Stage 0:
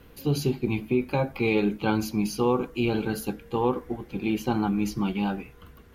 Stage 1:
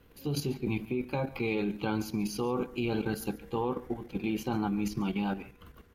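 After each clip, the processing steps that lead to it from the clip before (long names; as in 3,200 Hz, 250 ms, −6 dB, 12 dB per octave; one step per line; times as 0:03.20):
output level in coarse steps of 10 dB
single-tap delay 140 ms −19.5 dB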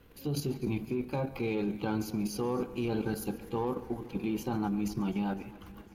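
dynamic equaliser 2,600 Hz, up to −5 dB, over −51 dBFS, Q 0.78
in parallel at −7 dB: soft clipping −36 dBFS, distortion −7 dB
on the sum: feedback echo with a swinging delay time 253 ms, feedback 72%, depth 85 cents, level −19.5 dB
level −2 dB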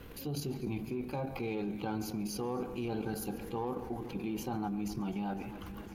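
dynamic equaliser 740 Hz, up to +6 dB, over −54 dBFS, Q 5.1
envelope flattener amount 50%
level −5.5 dB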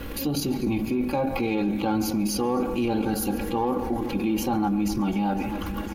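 comb filter 3.6 ms, depth 51%
in parallel at +1 dB: brickwall limiter −35 dBFS, peak gain reduction 10.5 dB
on the sum: level +7 dB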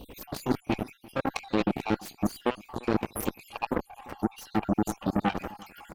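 time-frequency cells dropped at random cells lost 65%
harmonic generator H 4 −12 dB, 6 −11 dB, 7 −13 dB, 8 −18 dB, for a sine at −14.5 dBFS
slap from a distant wall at 59 metres, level −22 dB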